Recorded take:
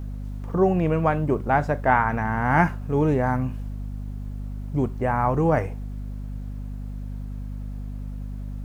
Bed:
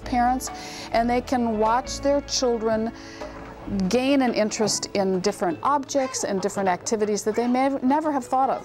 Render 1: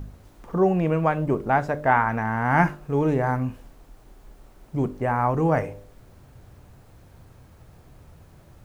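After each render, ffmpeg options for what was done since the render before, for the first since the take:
-af "bandreject=f=50:t=h:w=4,bandreject=f=100:t=h:w=4,bandreject=f=150:t=h:w=4,bandreject=f=200:t=h:w=4,bandreject=f=250:t=h:w=4,bandreject=f=300:t=h:w=4,bandreject=f=350:t=h:w=4,bandreject=f=400:t=h:w=4,bandreject=f=450:t=h:w=4,bandreject=f=500:t=h:w=4,bandreject=f=550:t=h:w=4,bandreject=f=600:t=h:w=4"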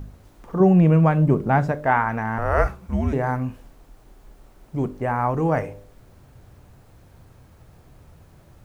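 -filter_complex "[0:a]asettb=1/sr,asplit=3[a][b][c];[a]atrim=end=0.604[d];[b]atrim=start=0.6:end=1.72,asetpts=PTS-STARTPTS,afade=t=in:d=0.004:c=qsin,afade=t=out:st=1.116:d=0.004:c=qsin,equalizer=f=160:w=0.99:g=10[e];[c]atrim=start=1.716[f];[d][e]acrossfade=d=0.004:c1=hsin:c2=qsin[g];[g][f]acrossfade=d=0.004:c1=qsin:c2=hsin,asettb=1/sr,asplit=3[h][i][j];[h]atrim=end=2.384[k];[i]atrim=start=2.38:end=3.13,asetpts=PTS-STARTPTS,afade=t=in:d=0.004:c=qsin,afade=t=out:st=0.746:d=0.004:c=qsin,afreqshift=-220[l];[j]atrim=start=3.126[m];[k][l]acrossfade=d=0.004:c1=hsin:c2=qsin[n];[n][m]acrossfade=d=0.004:c1=qsin:c2=hsin"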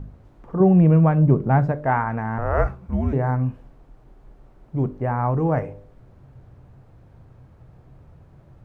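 -af "lowpass=f=1.2k:p=1,equalizer=f=130:t=o:w=0.3:g=6"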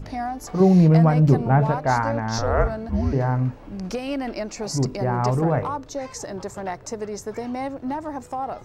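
-filter_complex "[1:a]volume=-7.5dB[a];[0:a][a]amix=inputs=2:normalize=0"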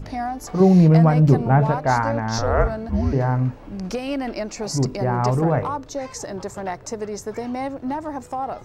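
-af "volume=1.5dB"

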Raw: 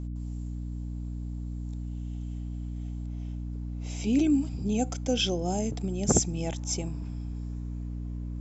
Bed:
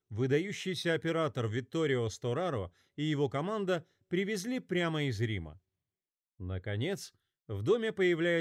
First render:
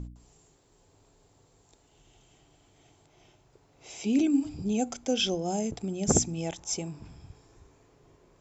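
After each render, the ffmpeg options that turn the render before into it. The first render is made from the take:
-af "bandreject=f=60:t=h:w=4,bandreject=f=120:t=h:w=4,bandreject=f=180:t=h:w=4,bandreject=f=240:t=h:w=4,bandreject=f=300:t=h:w=4"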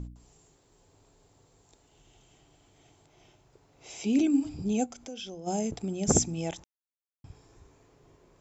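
-filter_complex "[0:a]asplit=3[a][b][c];[a]afade=t=out:st=4.85:d=0.02[d];[b]acompressor=threshold=-44dB:ratio=2.5:attack=3.2:release=140:knee=1:detection=peak,afade=t=in:st=4.85:d=0.02,afade=t=out:st=5.46:d=0.02[e];[c]afade=t=in:st=5.46:d=0.02[f];[d][e][f]amix=inputs=3:normalize=0,asplit=3[g][h][i];[g]atrim=end=6.64,asetpts=PTS-STARTPTS,afade=t=out:st=6.636:d=0.004:c=hsin[j];[h]atrim=start=6.64:end=7.24,asetpts=PTS-STARTPTS,volume=0[k];[i]atrim=start=7.24,asetpts=PTS-STARTPTS,afade=t=in:d=0.004:c=hsin[l];[j][k][l]concat=n=3:v=0:a=1"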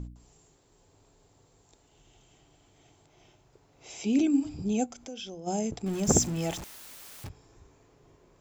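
-filter_complex "[0:a]asettb=1/sr,asplit=3[a][b][c];[a]atrim=end=5.864[d];[b]atrim=start=5.86:end=7.29,asetpts=PTS-STARTPTS,afade=t=in:d=0.004:c=qsin,afade=t=out:st=1.426:d=0.004:c=qsin,aeval=exprs='val(0)+0.5*0.0168*sgn(val(0))':c=same[e];[c]atrim=start=7.286[f];[d][e]acrossfade=d=0.004:c1=hsin:c2=qsin[g];[g][f]acrossfade=d=0.004:c1=qsin:c2=hsin"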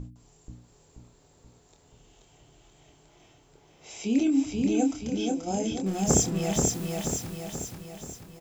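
-filter_complex "[0:a]asplit=2[a][b];[b]adelay=26,volume=-6dB[c];[a][c]amix=inputs=2:normalize=0,asplit=2[d][e];[e]aecho=0:1:482|964|1446|1928|2410|2892|3374:0.708|0.375|0.199|0.105|0.0559|0.0296|0.0157[f];[d][f]amix=inputs=2:normalize=0"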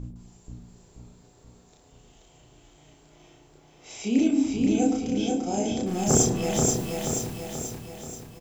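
-filter_complex "[0:a]asplit=2[a][b];[b]adelay=34,volume=-2.5dB[c];[a][c]amix=inputs=2:normalize=0,asplit=2[d][e];[e]adelay=105,lowpass=f=930:p=1,volume=-6dB,asplit=2[f][g];[g]adelay=105,lowpass=f=930:p=1,volume=0.53,asplit=2[h][i];[i]adelay=105,lowpass=f=930:p=1,volume=0.53,asplit=2[j][k];[k]adelay=105,lowpass=f=930:p=1,volume=0.53,asplit=2[l][m];[m]adelay=105,lowpass=f=930:p=1,volume=0.53,asplit=2[n][o];[o]adelay=105,lowpass=f=930:p=1,volume=0.53,asplit=2[p][q];[q]adelay=105,lowpass=f=930:p=1,volume=0.53[r];[d][f][h][j][l][n][p][r]amix=inputs=8:normalize=0"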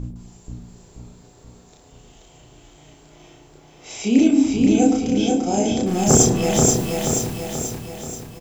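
-af "volume=7dB,alimiter=limit=-1dB:level=0:latency=1"

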